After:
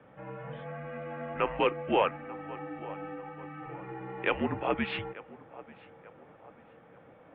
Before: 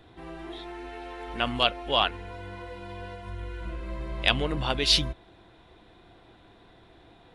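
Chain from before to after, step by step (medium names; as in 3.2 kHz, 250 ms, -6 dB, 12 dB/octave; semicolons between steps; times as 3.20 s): band-passed feedback delay 888 ms, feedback 50%, band-pass 930 Hz, level -18.5 dB; overdrive pedal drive 11 dB, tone 1 kHz, clips at -5.5 dBFS; mistuned SSB -200 Hz 350–2800 Hz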